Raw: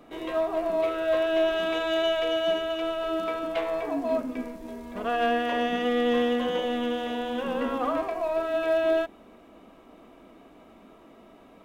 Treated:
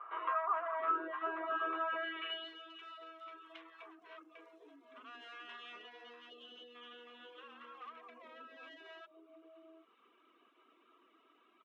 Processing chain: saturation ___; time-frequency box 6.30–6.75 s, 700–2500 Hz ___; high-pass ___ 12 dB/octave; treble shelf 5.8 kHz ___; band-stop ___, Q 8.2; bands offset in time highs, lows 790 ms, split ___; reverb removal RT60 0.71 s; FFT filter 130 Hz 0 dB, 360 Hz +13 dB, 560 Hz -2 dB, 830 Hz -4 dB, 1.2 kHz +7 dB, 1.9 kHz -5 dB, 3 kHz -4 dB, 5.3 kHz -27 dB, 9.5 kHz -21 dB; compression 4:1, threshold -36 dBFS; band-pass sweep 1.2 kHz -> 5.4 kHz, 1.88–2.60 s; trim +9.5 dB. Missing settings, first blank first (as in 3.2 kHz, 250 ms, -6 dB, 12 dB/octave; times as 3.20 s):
-26.5 dBFS, -12 dB, 360 Hz, -2 dB, 4.6 kHz, 600 Hz